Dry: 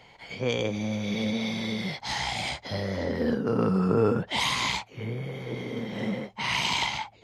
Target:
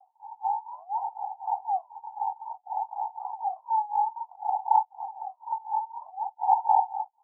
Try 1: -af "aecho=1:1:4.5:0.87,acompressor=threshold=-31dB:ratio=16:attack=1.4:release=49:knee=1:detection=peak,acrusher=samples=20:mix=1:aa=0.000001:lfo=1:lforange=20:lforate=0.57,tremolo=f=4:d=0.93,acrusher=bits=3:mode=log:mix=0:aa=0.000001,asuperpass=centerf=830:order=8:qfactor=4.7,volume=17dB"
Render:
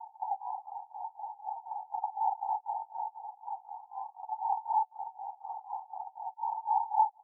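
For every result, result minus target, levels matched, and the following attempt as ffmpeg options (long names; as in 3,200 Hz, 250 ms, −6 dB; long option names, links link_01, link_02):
downward compressor: peak gain reduction +8.5 dB; sample-and-hold swept by an LFO: distortion −6 dB
-af "aecho=1:1:4.5:0.87,acompressor=threshold=-22dB:ratio=16:attack=1.4:release=49:knee=1:detection=peak,acrusher=samples=20:mix=1:aa=0.000001:lfo=1:lforange=20:lforate=0.57,tremolo=f=4:d=0.93,acrusher=bits=3:mode=log:mix=0:aa=0.000001,asuperpass=centerf=830:order=8:qfactor=4.7,volume=17dB"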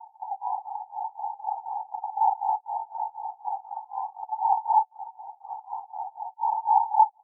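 sample-and-hold swept by an LFO: distortion −6 dB
-af "aecho=1:1:4.5:0.87,acompressor=threshold=-22dB:ratio=16:attack=1.4:release=49:knee=1:detection=peak,acrusher=samples=46:mix=1:aa=0.000001:lfo=1:lforange=46:lforate=0.57,tremolo=f=4:d=0.93,acrusher=bits=3:mode=log:mix=0:aa=0.000001,asuperpass=centerf=830:order=8:qfactor=4.7,volume=17dB"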